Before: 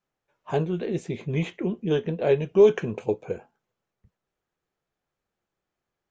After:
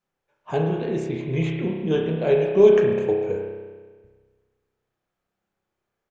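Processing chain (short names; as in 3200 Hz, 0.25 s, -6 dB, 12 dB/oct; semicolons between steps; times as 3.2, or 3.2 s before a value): speakerphone echo 0.15 s, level -18 dB; spring tank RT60 1.5 s, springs 31 ms, chirp 75 ms, DRR 0.5 dB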